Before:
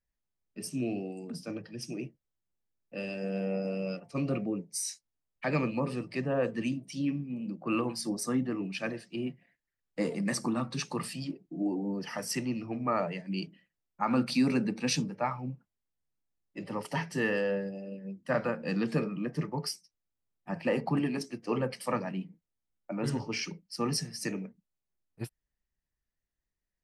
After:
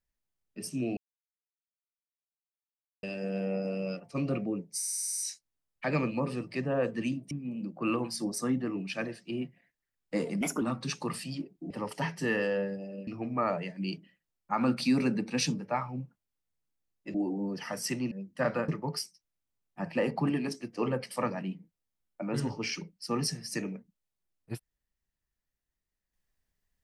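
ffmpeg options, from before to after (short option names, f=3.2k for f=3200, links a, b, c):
-filter_complex "[0:a]asplit=19[a][b][c][d][e][f][g][h][i][j][k][l][m][n][o][p][q][r][s];[a]atrim=end=0.97,asetpts=PTS-STARTPTS,afade=t=out:st=0.966:d=0.004:c=hsin[t];[b]atrim=start=0.97:end=3.03,asetpts=PTS-STARTPTS,volume=0[u];[c]atrim=start=3.03:end=4.832,asetpts=PTS-STARTPTS,afade=t=in:d=0.004:c=hsin[v];[d]atrim=start=4.778:end=4.832[w];[e]atrim=start=4.778:end=4.832[x];[f]atrim=start=4.778:end=4.832[y];[g]atrim=start=4.778:end=4.832[z];[h]atrim=start=4.778:end=4.832[aa];[i]atrim=start=4.778:end=4.832[ab];[j]atrim=start=4.778:end=4.832[ac];[k]atrim=start=4.778:end=6.912[ad];[l]atrim=start=7.158:end=10.264[ae];[m]atrim=start=10.26:end=10.51,asetpts=PTS-STARTPTS,asetrate=54243,aresample=44100,atrim=end_sample=8963,asetpts=PTS-STARTPTS[af];[n]atrim=start=10.506:end=11.602[ag];[o]atrim=start=16.638:end=18.012[ah];[p]atrim=start=12.568:end=16.642[ai];[q]atrim=start=11.598:end=12.572[aj];[r]atrim=start=18.008:end=18.582[ak];[s]atrim=start=19.378[al];[t][u][v]concat=n=3:v=0:a=1[am];[am][w]acrossfade=d=0.004:c1=hsin:c2=hsin[an];[an][x]acrossfade=d=0.004:c1=hsin:c2=hsin[ao];[ao][y]acrossfade=d=0.004:c1=hsin:c2=hsin[ap];[ap][z]acrossfade=d=0.004:c1=hsin:c2=hsin[aq];[aq][aa]acrossfade=d=0.004:c1=hsin:c2=hsin[ar];[ar][ab]acrossfade=d=0.004:c1=hsin:c2=hsin[as];[as][ac]acrossfade=d=0.004:c1=hsin:c2=hsin[at];[at][ad]acrossfade=d=0.004:c1=hsin:c2=hsin[au];[au][ae]acrossfade=d=0.004:c1=hsin:c2=hsin[av];[av][af]acrossfade=d=0.004:c1=hsin:c2=hsin[aw];[aw][ag]acrossfade=d=0.004:c1=hsin:c2=hsin[ax];[ax][ah]acrossfade=d=0.004:c1=hsin:c2=hsin[ay];[ay][ai]acrossfade=d=0.004:c1=hsin:c2=hsin[az];[az][aj]acrossfade=d=0.004:c1=hsin:c2=hsin[ba];[ba][ak]acrossfade=d=0.004:c1=hsin:c2=hsin[bb];[bb][al]acrossfade=d=0.004:c1=hsin:c2=hsin"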